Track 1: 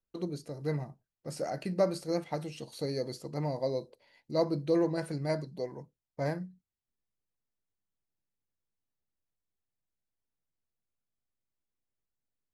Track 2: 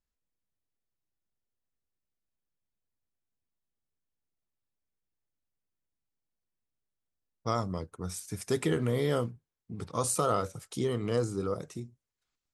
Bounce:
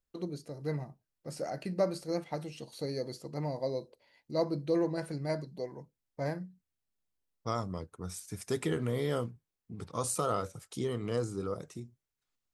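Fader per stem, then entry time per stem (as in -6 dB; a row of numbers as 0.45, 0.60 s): -2.0, -3.5 dB; 0.00, 0.00 s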